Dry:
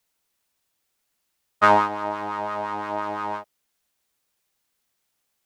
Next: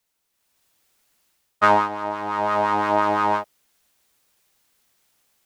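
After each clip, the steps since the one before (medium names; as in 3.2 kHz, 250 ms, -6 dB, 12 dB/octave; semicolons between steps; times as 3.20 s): level rider gain up to 10 dB; trim -1 dB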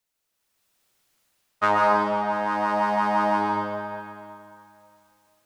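algorithmic reverb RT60 2.6 s, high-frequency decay 0.8×, pre-delay 90 ms, DRR -2.5 dB; trim -5.5 dB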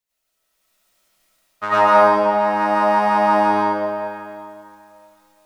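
algorithmic reverb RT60 0.44 s, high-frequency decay 0.65×, pre-delay 60 ms, DRR -9.5 dB; trim -4.5 dB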